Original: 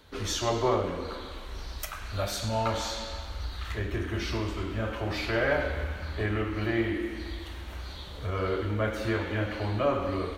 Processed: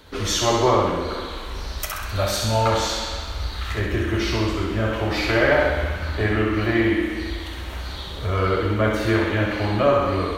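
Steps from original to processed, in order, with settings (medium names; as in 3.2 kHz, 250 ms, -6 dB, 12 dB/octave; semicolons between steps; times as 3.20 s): thinning echo 65 ms, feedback 55%, high-pass 150 Hz, level -4.5 dB; trim +7.5 dB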